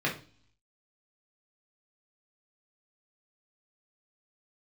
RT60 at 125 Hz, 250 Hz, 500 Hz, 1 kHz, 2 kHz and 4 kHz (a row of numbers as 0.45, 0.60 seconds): 0.80, 0.65, 0.40, 0.40, 0.40, 0.60 seconds